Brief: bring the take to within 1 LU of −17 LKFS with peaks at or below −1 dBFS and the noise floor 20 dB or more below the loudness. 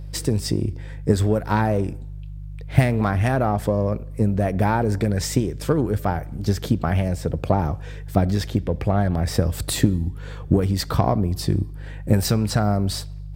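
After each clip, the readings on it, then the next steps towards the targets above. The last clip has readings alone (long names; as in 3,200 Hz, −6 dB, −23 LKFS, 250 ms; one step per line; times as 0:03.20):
mains hum 50 Hz; hum harmonics up to 150 Hz; level of the hum −32 dBFS; integrated loudness −22.5 LKFS; sample peak −3.0 dBFS; target loudness −17.0 LKFS
→ hum removal 50 Hz, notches 3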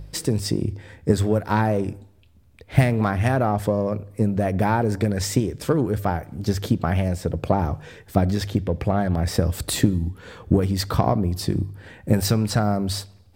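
mains hum none found; integrated loudness −23.0 LKFS; sample peak −3.0 dBFS; target loudness −17.0 LKFS
→ level +6 dB
brickwall limiter −1 dBFS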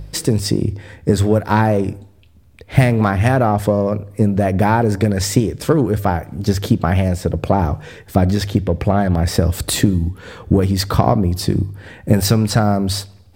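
integrated loudness −17.5 LKFS; sample peak −1.0 dBFS; background noise floor −46 dBFS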